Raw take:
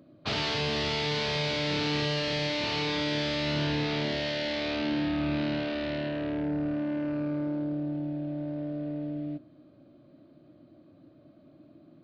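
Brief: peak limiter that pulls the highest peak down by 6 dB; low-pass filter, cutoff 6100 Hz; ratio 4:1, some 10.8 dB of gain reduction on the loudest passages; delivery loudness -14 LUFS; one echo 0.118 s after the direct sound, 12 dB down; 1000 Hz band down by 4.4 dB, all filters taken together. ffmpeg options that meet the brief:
-af "lowpass=6.1k,equalizer=f=1k:t=o:g=-5.5,acompressor=threshold=-40dB:ratio=4,alimiter=level_in=10dB:limit=-24dB:level=0:latency=1,volume=-10dB,aecho=1:1:118:0.251,volume=26.5dB"

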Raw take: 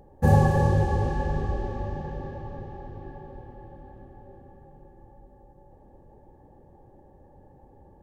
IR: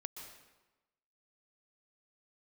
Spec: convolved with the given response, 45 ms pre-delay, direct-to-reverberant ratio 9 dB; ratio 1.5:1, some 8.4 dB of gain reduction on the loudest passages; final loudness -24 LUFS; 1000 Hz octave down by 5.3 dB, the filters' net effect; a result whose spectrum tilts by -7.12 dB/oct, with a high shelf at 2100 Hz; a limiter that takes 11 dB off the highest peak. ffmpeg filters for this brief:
-filter_complex "[0:a]equalizer=f=1k:t=o:g=-6.5,highshelf=f=2.1k:g=-3,acompressor=threshold=-38dB:ratio=1.5,alimiter=level_in=4dB:limit=-24dB:level=0:latency=1,volume=-4dB,asplit=2[a][b];[1:a]atrim=start_sample=2205,adelay=45[c];[b][c]afir=irnorm=-1:irlink=0,volume=-6dB[d];[a][d]amix=inputs=2:normalize=0,volume=15.5dB"

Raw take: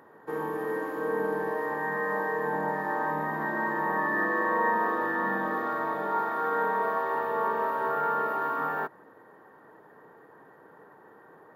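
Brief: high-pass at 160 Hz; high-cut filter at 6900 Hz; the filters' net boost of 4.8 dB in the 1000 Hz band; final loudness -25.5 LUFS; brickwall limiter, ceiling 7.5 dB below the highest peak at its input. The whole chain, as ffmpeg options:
-af "highpass=160,lowpass=6.9k,equalizer=f=1k:t=o:g=5.5,volume=2.5dB,alimiter=limit=-17dB:level=0:latency=1"

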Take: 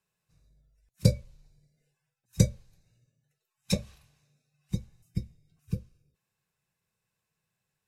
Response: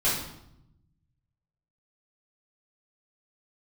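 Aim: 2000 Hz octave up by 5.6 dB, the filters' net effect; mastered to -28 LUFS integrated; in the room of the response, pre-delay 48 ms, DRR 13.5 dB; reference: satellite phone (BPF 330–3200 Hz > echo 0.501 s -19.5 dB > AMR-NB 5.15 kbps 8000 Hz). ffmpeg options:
-filter_complex "[0:a]equalizer=f=2k:t=o:g=8,asplit=2[a][b];[1:a]atrim=start_sample=2205,adelay=48[c];[b][c]afir=irnorm=-1:irlink=0,volume=-25.5dB[d];[a][d]amix=inputs=2:normalize=0,highpass=330,lowpass=3.2k,aecho=1:1:501:0.106,volume=16.5dB" -ar 8000 -c:a libopencore_amrnb -b:a 5150

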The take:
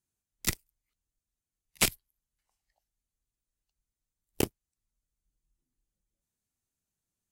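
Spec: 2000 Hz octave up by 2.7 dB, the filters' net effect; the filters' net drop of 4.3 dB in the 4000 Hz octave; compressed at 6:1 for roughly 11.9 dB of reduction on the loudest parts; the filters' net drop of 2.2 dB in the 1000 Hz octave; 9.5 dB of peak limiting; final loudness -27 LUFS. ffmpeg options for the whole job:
-af "equalizer=f=1k:t=o:g=-4.5,equalizer=f=2k:t=o:g=6.5,equalizer=f=4k:t=o:g=-8,acompressor=threshold=-34dB:ratio=6,volume=20.5dB,alimiter=limit=-7dB:level=0:latency=1"

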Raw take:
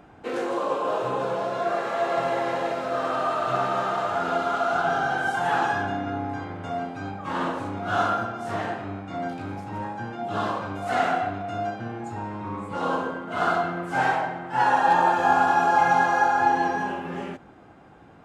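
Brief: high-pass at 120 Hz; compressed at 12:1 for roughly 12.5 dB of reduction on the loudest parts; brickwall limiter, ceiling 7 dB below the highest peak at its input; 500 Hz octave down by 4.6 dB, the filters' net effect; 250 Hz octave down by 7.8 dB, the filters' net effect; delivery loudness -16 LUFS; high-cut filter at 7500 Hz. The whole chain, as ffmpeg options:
-af "highpass=120,lowpass=7.5k,equalizer=f=250:t=o:g=-8.5,equalizer=f=500:t=o:g=-5,acompressor=threshold=-30dB:ratio=12,volume=21dB,alimiter=limit=-7.5dB:level=0:latency=1"

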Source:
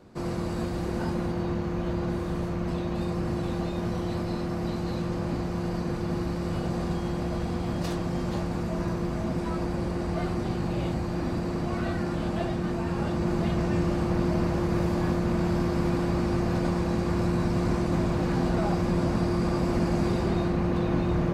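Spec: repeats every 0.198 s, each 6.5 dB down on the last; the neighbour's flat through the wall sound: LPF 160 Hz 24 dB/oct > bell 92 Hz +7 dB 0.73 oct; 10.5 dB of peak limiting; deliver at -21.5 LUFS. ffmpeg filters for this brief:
-af "alimiter=limit=-24dB:level=0:latency=1,lowpass=f=160:w=0.5412,lowpass=f=160:w=1.3066,equalizer=f=92:t=o:w=0.73:g=7,aecho=1:1:198|396|594|792|990|1188:0.473|0.222|0.105|0.0491|0.0231|0.0109,volume=13dB"

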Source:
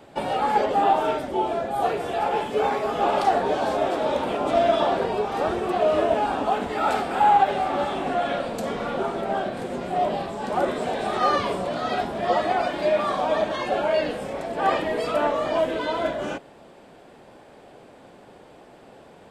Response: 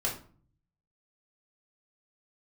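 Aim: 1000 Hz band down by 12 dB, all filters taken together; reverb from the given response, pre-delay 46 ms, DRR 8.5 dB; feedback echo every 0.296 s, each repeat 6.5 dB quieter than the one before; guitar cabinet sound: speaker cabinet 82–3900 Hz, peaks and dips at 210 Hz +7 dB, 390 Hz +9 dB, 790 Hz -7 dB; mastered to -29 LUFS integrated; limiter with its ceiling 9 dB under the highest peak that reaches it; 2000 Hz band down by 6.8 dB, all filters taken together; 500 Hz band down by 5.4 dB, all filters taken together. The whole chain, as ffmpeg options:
-filter_complex "[0:a]equalizer=f=500:t=o:g=-8.5,equalizer=f=1k:t=o:g=-6,equalizer=f=2k:t=o:g=-6,alimiter=limit=-24dB:level=0:latency=1,aecho=1:1:296|592|888|1184|1480|1776:0.473|0.222|0.105|0.0491|0.0231|0.0109,asplit=2[a][b];[1:a]atrim=start_sample=2205,adelay=46[c];[b][c]afir=irnorm=-1:irlink=0,volume=-14.5dB[d];[a][d]amix=inputs=2:normalize=0,highpass=82,equalizer=f=210:t=q:w=4:g=7,equalizer=f=390:t=q:w=4:g=9,equalizer=f=790:t=q:w=4:g=-7,lowpass=f=3.9k:w=0.5412,lowpass=f=3.9k:w=1.3066,volume=1dB"

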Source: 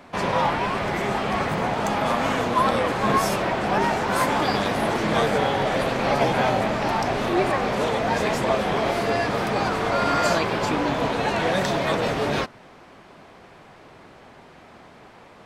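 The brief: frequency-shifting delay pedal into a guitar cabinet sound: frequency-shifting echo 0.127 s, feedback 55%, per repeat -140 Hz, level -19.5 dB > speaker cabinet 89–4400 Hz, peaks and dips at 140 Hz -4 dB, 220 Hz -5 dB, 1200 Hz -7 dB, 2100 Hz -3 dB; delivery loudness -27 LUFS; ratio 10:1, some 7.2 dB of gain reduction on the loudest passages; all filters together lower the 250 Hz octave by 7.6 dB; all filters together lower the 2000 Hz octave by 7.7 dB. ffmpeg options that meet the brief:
-filter_complex "[0:a]equalizer=f=250:t=o:g=-7.5,equalizer=f=2k:t=o:g=-7.5,acompressor=threshold=-25dB:ratio=10,asplit=5[a][b][c][d][e];[b]adelay=127,afreqshift=-140,volume=-19.5dB[f];[c]adelay=254,afreqshift=-280,volume=-24.7dB[g];[d]adelay=381,afreqshift=-420,volume=-29.9dB[h];[e]adelay=508,afreqshift=-560,volume=-35.1dB[i];[a][f][g][h][i]amix=inputs=5:normalize=0,highpass=89,equalizer=f=140:t=q:w=4:g=-4,equalizer=f=220:t=q:w=4:g=-5,equalizer=f=1.2k:t=q:w=4:g=-7,equalizer=f=2.1k:t=q:w=4:g=-3,lowpass=f=4.4k:w=0.5412,lowpass=f=4.4k:w=1.3066,volume=3.5dB"

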